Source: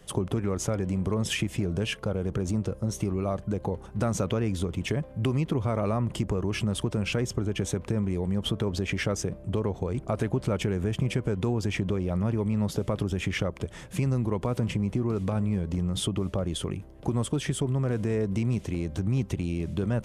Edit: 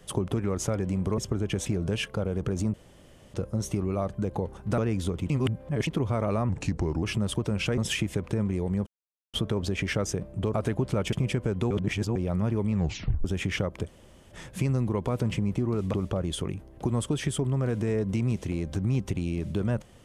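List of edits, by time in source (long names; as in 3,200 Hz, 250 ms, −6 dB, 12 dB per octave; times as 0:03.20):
0:01.18–0:01.55: swap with 0:07.24–0:07.72
0:02.63: splice in room tone 0.60 s
0:04.07–0:04.33: remove
0:04.85–0:05.42: reverse
0:06.04–0:06.49: play speed 84%
0:08.44: splice in silence 0.47 s
0:09.64–0:10.08: remove
0:10.67–0:10.94: remove
0:11.52–0:11.97: reverse
0:12.55: tape stop 0.51 s
0:13.69: splice in room tone 0.44 s
0:15.31–0:16.16: remove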